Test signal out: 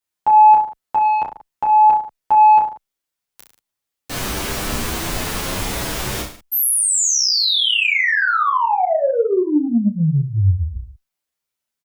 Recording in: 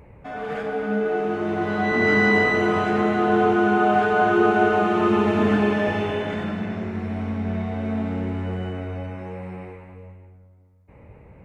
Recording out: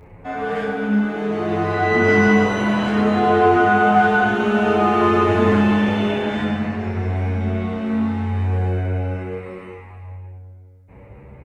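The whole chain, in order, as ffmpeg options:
-filter_complex "[0:a]aecho=1:1:30|63|99.3|139.2|183.2:0.631|0.398|0.251|0.158|0.1,acontrast=52,asplit=2[s0][s1];[s1]adelay=9.2,afreqshift=0.58[s2];[s0][s2]amix=inputs=2:normalize=1"

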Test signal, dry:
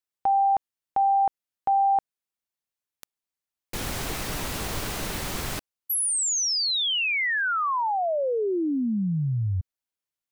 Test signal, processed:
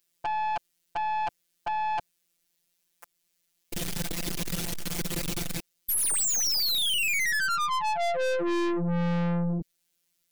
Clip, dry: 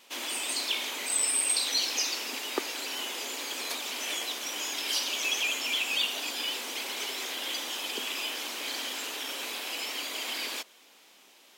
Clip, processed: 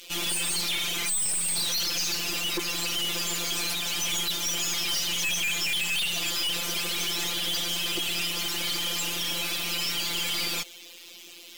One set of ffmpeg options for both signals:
-filter_complex "[0:a]equalizer=f=1000:w=0.8:g=-10.5,asplit=2[s0][s1];[s1]alimiter=level_in=1.19:limit=0.0631:level=0:latency=1:release=241,volume=0.841,volume=1.12[s2];[s0][s2]amix=inputs=2:normalize=0,afftfilt=real='hypot(re,im)*cos(PI*b)':imag='0':win_size=1024:overlap=0.75,acontrast=87,aeval=exprs='(tanh(50.1*val(0)+0.4)-tanh(0.4))/50.1':c=same,volume=2.51"

